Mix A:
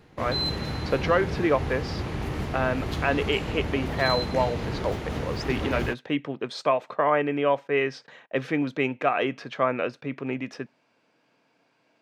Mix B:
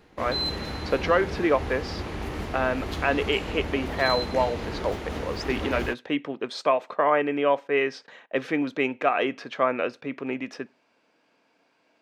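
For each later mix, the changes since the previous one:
speech: send +11.5 dB; master: add peaking EQ 130 Hz -9.5 dB 0.78 oct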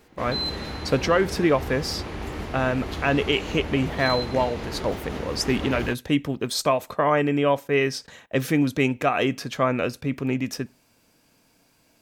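speech: remove band-pass 350–2900 Hz

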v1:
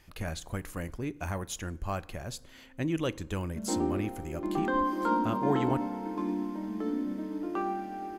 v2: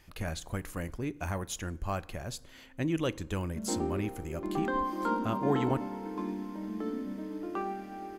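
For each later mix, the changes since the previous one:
background: send off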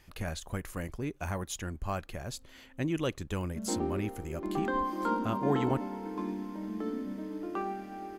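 reverb: off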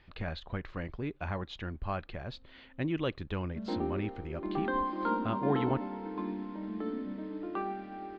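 master: add Chebyshev low-pass 4.1 kHz, order 4

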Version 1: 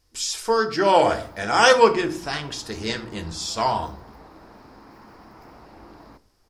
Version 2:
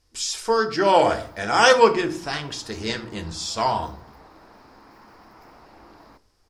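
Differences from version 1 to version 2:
speech: add low-pass 11 kHz 12 dB/octave; background: add bass shelf 440 Hz -6.5 dB

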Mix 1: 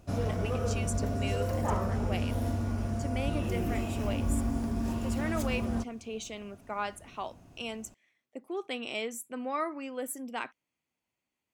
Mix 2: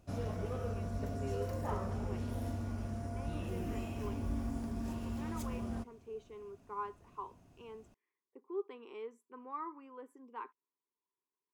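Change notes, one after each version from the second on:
speech: add two resonant band-passes 640 Hz, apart 1.3 oct; background -7.5 dB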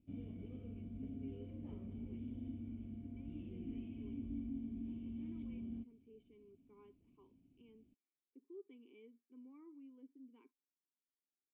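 master: add cascade formant filter i

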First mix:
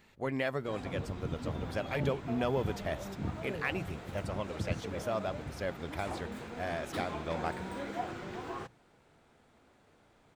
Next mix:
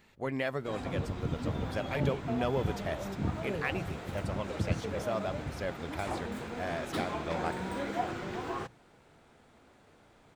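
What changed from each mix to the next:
background +4.0 dB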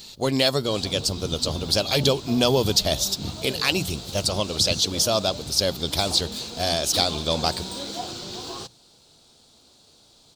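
speech +11.5 dB; master: add resonant high shelf 2.9 kHz +14 dB, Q 3

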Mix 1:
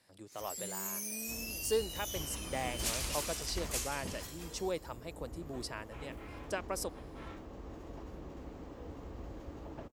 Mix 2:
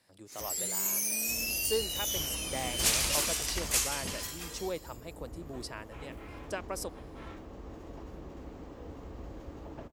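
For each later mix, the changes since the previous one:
first sound +9.0 dB; reverb: on, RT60 1.1 s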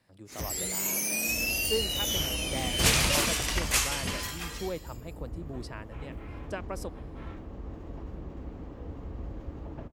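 first sound +8.0 dB; master: add tone controls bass +7 dB, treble -8 dB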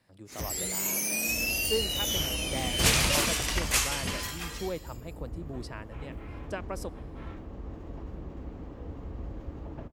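speech: send on

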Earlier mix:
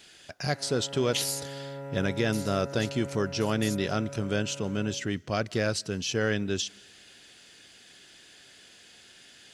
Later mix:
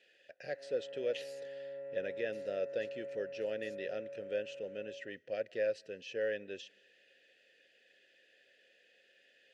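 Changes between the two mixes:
background: remove Butterworth band-stop 1.1 kHz, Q 5.7; master: add vowel filter e

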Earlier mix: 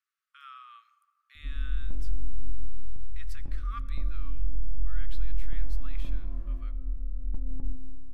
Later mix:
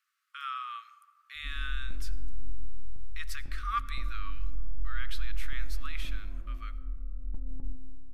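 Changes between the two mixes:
speech +10.5 dB; background -4.5 dB

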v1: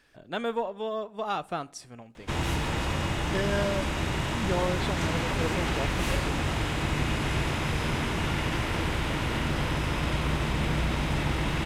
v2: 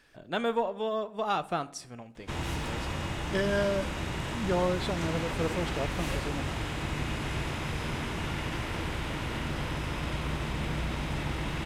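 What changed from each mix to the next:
speech: send +7.0 dB; background -5.0 dB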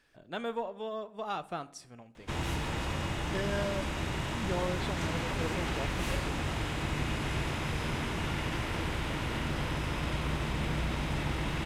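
speech -6.5 dB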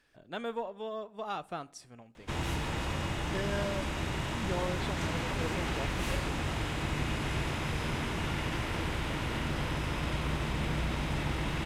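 speech: send -6.0 dB

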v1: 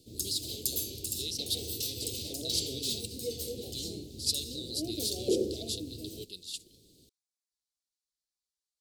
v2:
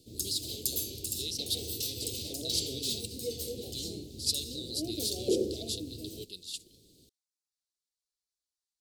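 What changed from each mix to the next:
no change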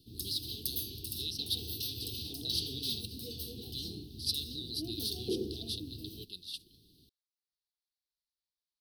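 master: add static phaser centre 2.1 kHz, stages 6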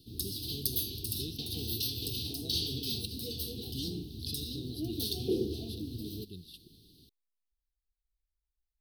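speech: remove frequency weighting ITU-R 468; background +4.0 dB

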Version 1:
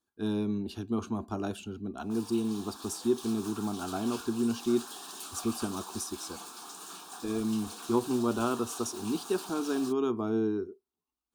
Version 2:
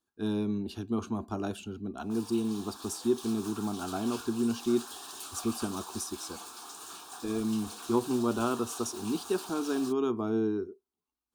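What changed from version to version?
background: add resonant low shelf 110 Hz +12.5 dB, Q 3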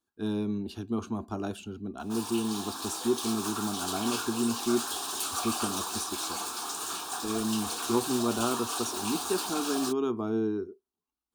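background +10.0 dB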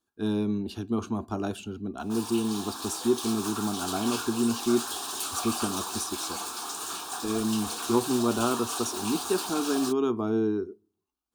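speech: send on

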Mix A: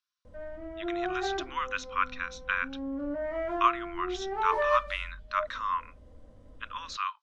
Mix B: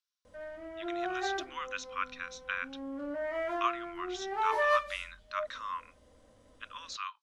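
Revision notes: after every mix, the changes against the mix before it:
speech -8.0 dB; master: add tilt EQ +3 dB/octave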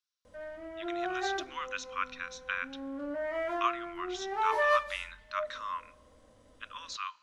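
reverb: on, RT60 1.8 s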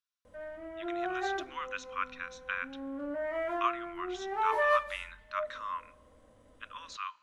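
master: add peaking EQ 5.1 kHz -7.5 dB 1.2 oct

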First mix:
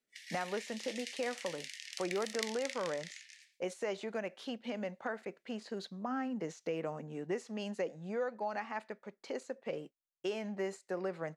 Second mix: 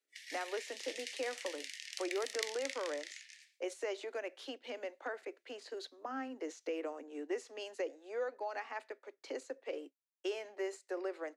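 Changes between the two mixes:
speech: add peaking EQ 900 Hz -3.5 dB 1.7 oct; master: add steep high-pass 270 Hz 96 dB/octave

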